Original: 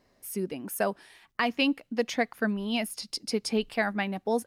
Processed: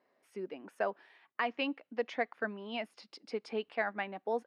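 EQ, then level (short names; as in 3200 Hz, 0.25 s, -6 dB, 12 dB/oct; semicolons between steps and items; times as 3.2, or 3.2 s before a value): BPF 370–2400 Hz; -4.5 dB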